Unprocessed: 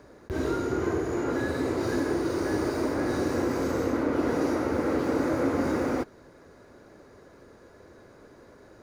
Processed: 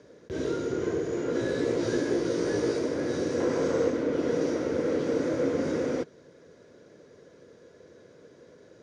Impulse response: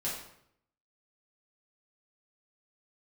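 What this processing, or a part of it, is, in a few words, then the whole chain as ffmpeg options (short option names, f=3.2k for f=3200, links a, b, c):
car door speaker: -filter_complex "[0:a]highpass=100,equalizer=f=160:t=q:w=4:g=6,equalizer=f=480:t=q:w=4:g=8,equalizer=f=820:t=q:w=4:g=-8,equalizer=f=1.2k:t=q:w=4:g=-6,equalizer=f=3.3k:t=q:w=4:g=7,equalizer=f=5.8k:t=q:w=4:g=6,lowpass=f=8.5k:w=0.5412,lowpass=f=8.5k:w=1.3066,asettb=1/sr,asplit=3[a][b][c];[a]atrim=end=1.334[d];[b]atrim=start=1.33:end=2.79,asetpts=PTS-STARTPTS,afade=t=in:d=0.004:c=qsin,afade=t=out:st=1.456:d=0.004:c=qsin,asplit=2[e][f];[f]adelay=17,volume=-2dB[g];[e][g]amix=inputs=2:normalize=0,atrim=end_sample=64386[h];[c]atrim=start=2.786[i];[d][h]acrossfade=d=0.004:c1=hsin:c2=qsin[j];[j][i]acrossfade=d=0.004:c1=qsin:c2=hsin,asettb=1/sr,asplit=3[k][l][m];[k]atrim=end=3.404[n];[l]atrim=start=3.4:end=3.9,asetpts=PTS-STARTPTS,afade=t=in:d=0.004:c=qsin,afade=t=out:st=0.496:d=0.004:c=qsin,equalizer=f=950:t=o:w=1.8:g=6.5[o];[m]atrim=start=3.896[p];[n][o]acrossfade=d=0.004:c1=hsin:c2=qsin[q];[q][p]acrossfade=d=0.004:c1=qsin:c2=hsin,volume=-3.5dB"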